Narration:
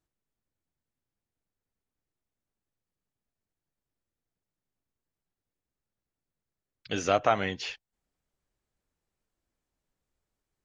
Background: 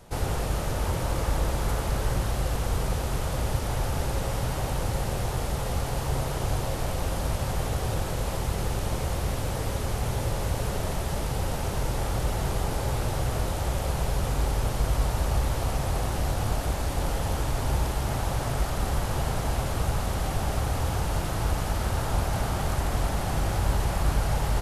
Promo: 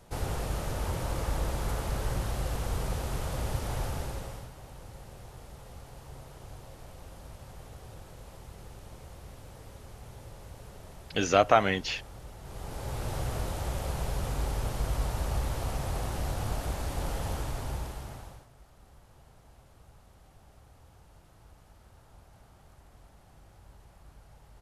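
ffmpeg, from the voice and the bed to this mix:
-filter_complex "[0:a]adelay=4250,volume=3dB[a];[1:a]volume=8.5dB,afade=t=out:st=3.82:d=0.69:silence=0.199526,afade=t=in:st=12.42:d=0.74:silence=0.211349,afade=t=out:st=17.29:d=1.18:silence=0.0630957[b];[a][b]amix=inputs=2:normalize=0"

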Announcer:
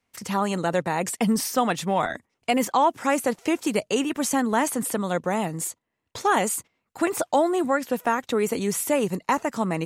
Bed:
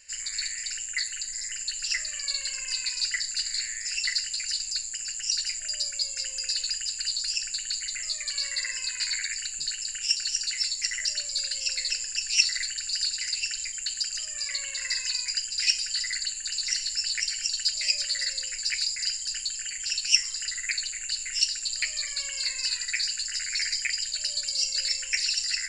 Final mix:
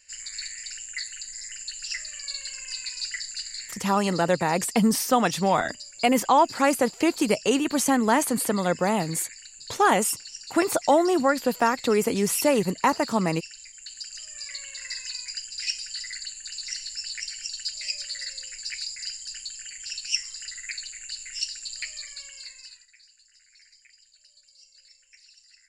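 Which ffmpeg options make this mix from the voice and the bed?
-filter_complex "[0:a]adelay=3550,volume=1.5dB[a];[1:a]volume=2.5dB,afade=t=out:st=3.29:d=0.68:silence=0.398107,afade=t=in:st=13.74:d=0.62:silence=0.473151,afade=t=out:st=21.84:d=1.04:silence=0.0749894[b];[a][b]amix=inputs=2:normalize=0"

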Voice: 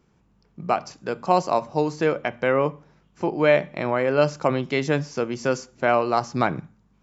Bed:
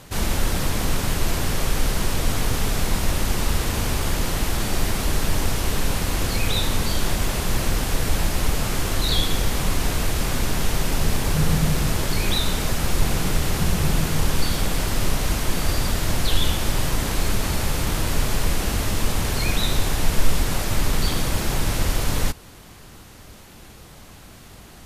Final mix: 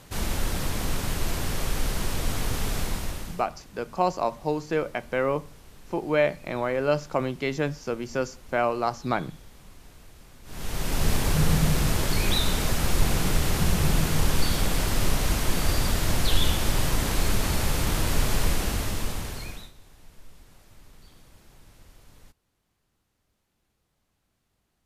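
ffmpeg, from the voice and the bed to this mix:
-filter_complex "[0:a]adelay=2700,volume=-4.5dB[a];[1:a]volume=20dB,afade=t=out:st=2.78:d=0.68:silence=0.0794328,afade=t=in:st=10.44:d=0.65:silence=0.0530884,afade=t=out:st=18.44:d=1.28:silence=0.0354813[b];[a][b]amix=inputs=2:normalize=0"

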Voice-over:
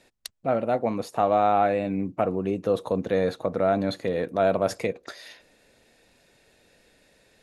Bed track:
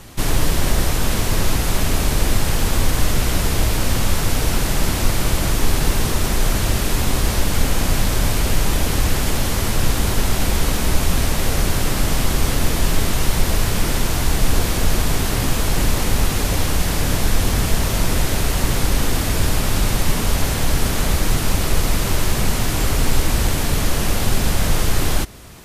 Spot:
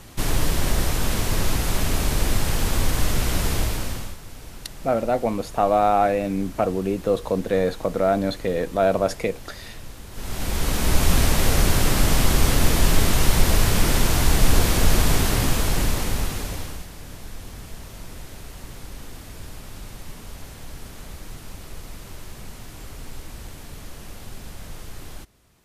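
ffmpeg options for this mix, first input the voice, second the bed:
-filter_complex "[0:a]adelay=4400,volume=2.5dB[a];[1:a]volume=17.5dB,afade=t=out:st=3.52:d=0.65:silence=0.133352,afade=t=in:st=10.11:d=1:silence=0.0841395,afade=t=out:st=15.12:d=1.76:silence=0.1[b];[a][b]amix=inputs=2:normalize=0"

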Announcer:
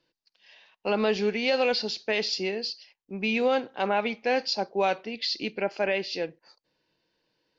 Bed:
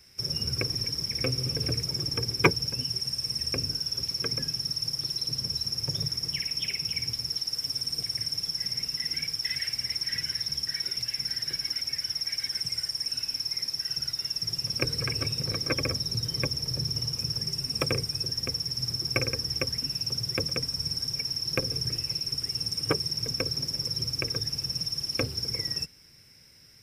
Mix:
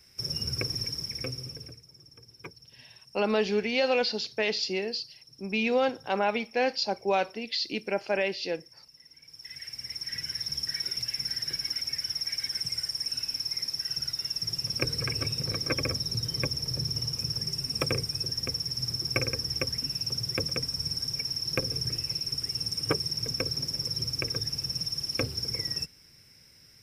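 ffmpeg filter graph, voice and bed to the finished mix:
-filter_complex "[0:a]adelay=2300,volume=-1dB[a];[1:a]volume=20.5dB,afade=t=out:st=0.82:d=0.98:silence=0.0841395,afade=t=in:st=9.22:d=1.45:silence=0.0749894[b];[a][b]amix=inputs=2:normalize=0"

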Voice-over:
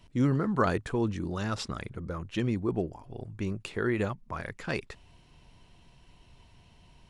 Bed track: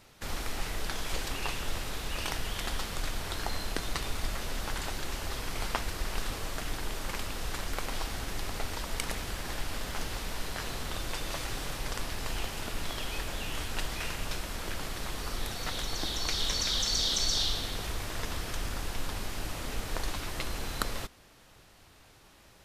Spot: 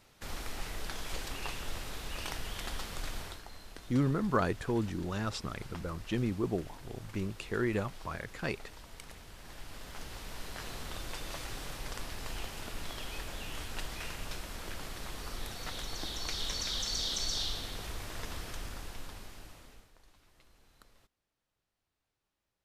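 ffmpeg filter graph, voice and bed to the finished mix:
-filter_complex "[0:a]adelay=3750,volume=-3dB[a];[1:a]volume=5dB,afade=t=out:st=3.2:d=0.22:silence=0.298538,afade=t=in:st=9.32:d=1.42:silence=0.316228,afade=t=out:st=18.39:d=1.53:silence=0.0668344[b];[a][b]amix=inputs=2:normalize=0"

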